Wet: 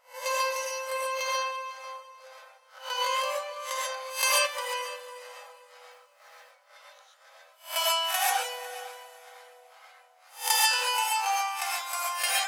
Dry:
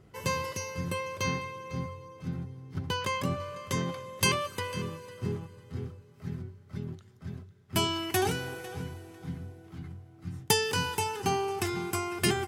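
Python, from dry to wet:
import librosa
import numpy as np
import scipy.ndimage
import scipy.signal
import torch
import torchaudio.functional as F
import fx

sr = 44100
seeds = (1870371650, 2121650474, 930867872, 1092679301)

y = fx.spec_swells(x, sr, rise_s=0.32)
y = fx.brickwall_highpass(y, sr, low_hz=490.0)
y = fx.rev_gated(y, sr, seeds[0], gate_ms=160, shape='rising', drr_db=-4.0)
y = fx.mod_noise(y, sr, seeds[1], snr_db=22, at=(5.9, 6.52))
y = y * 10.0 ** (-1.0 / 20.0)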